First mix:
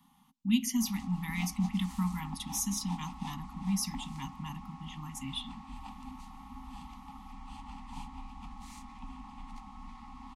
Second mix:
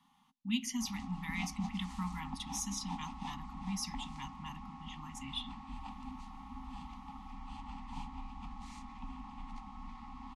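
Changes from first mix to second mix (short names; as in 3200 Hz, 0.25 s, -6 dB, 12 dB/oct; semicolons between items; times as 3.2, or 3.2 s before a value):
speech: add low shelf 480 Hz -9 dB; master: add air absorption 61 m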